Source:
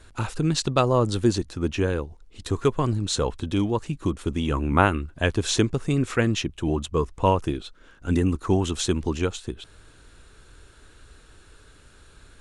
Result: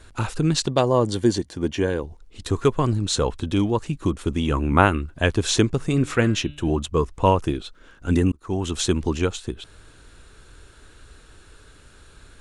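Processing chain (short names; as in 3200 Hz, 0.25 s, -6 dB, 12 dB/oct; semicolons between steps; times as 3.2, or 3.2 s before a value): 0.66–2.04 notch comb 1300 Hz; 5.77–6.72 de-hum 146.7 Hz, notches 28; 8.32–8.81 fade in; gain +2.5 dB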